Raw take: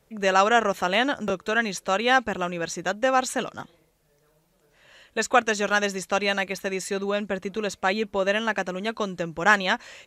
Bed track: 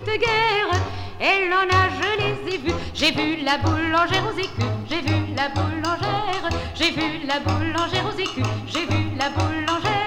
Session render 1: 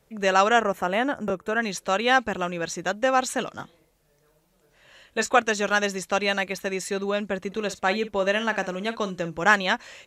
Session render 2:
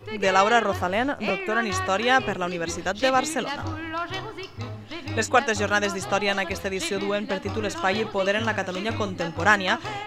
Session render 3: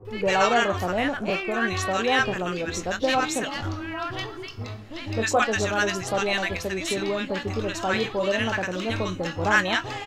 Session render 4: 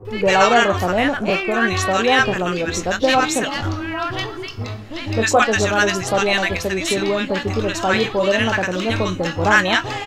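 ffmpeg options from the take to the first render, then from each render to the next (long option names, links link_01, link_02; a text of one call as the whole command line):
ffmpeg -i in.wav -filter_complex "[0:a]asettb=1/sr,asplit=3[link_01][link_02][link_03];[link_01]atrim=end=0.614[link_04];[link_02]atrim=start=0.61:end=1.63,asetpts=PTS-STARTPTS,afade=type=in:duration=0.004:curve=qsin,afade=type=out:start_time=1.016:duration=0.004:curve=qsin,equalizer=frequency=4200:width=1:gain=-13.5[link_05];[link_03]atrim=start=1.626[link_06];[link_04][link_05]acrossfade=duration=0.004:curve1=hsin:curve2=qsin[link_07];[link_07][link_06]acrossfade=duration=0.004:curve1=qsin:curve2=hsin,asettb=1/sr,asplit=3[link_08][link_09][link_10];[link_08]atrim=end=3.494[link_11];[link_09]atrim=start=3.49:end=5.38,asetpts=PTS-STARTPTS,afade=type=in:duration=0.004:curve=qsin,afade=type=out:start_time=1.886:duration=0.004:curve=qsin,asplit=2[link_12][link_13];[link_13]adelay=22,volume=-11dB[link_14];[link_12][link_14]amix=inputs=2:normalize=0,atrim=end_sample=83349[link_15];[link_10]atrim=start=5.376[link_16];[link_11][link_15]acrossfade=duration=0.004:curve1=hsin:curve2=qsin[link_17];[link_17][link_16]acrossfade=duration=0.004:curve1=qsin:curve2=hsin,asettb=1/sr,asplit=3[link_18][link_19][link_20];[link_18]atrim=end=7.474[link_21];[link_19]atrim=start=7.47:end=9.45,asetpts=PTS-STARTPTS,afade=type=in:duration=0.004:curve=qsin,afade=type=out:start_time=1.976:duration=0.004:curve=qsin,asplit=2[link_22][link_23];[link_23]adelay=48,volume=-14dB[link_24];[link_22][link_24]amix=inputs=2:normalize=0,atrim=end_sample=87318[link_25];[link_20]atrim=start=9.446[link_26];[link_21][link_25]acrossfade=duration=0.004:curve1=hsin:curve2=qsin[link_27];[link_27][link_26]acrossfade=duration=0.004:curve1=qsin:curve2=hsin" out.wav
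ffmpeg -i in.wav -i bed.wav -filter_complex "[1:a]volume=-11dB[link_01];[0:a][link_01]amix=inputs=2:normalize=0" out.wav
ffmpeg -i in.wav -filter_complex "[0:a]asplit=2[link_01][link_02];[link_02]adelay=22,volume=-13dB[link_03];[link_01][link_03]amix=inputs=2:normalize=0,acrossover=split=1000[link_04][link_05];[link_05]adelay=50[link_06];[link_04][link_06]amix=inputs=2:normalize=0" out.wav
ffmpeg -i in.wav -af "volume=7dB,alimiter=limit=-2dB:level=0:latency=1" out.wav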